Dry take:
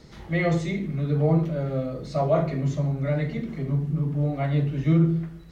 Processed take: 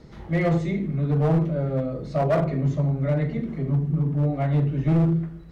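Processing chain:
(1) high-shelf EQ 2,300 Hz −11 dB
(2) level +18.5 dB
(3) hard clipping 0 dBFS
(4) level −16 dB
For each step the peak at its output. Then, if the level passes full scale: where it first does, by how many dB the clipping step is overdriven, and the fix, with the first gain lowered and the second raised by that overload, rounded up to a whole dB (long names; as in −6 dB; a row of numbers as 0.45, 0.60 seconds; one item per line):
−12.0, +6.5, 0.0, −16.0 dBFS
step 2, 6.5 dB
step 2 +11.5 dB, step 4 −9 dB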